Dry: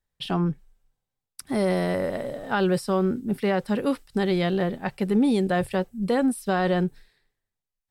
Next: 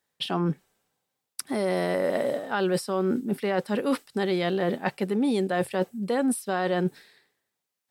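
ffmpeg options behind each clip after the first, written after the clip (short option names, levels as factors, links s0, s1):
-af "highpass=230,areverse,acompressor=threshold=0.0282:ratio=6,areverse,volume=2.66"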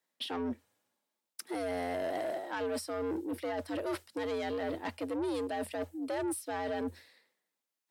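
-af "asoftclip=type=tanh:threshold=0.0531,afreqshift=84,volume=0.562"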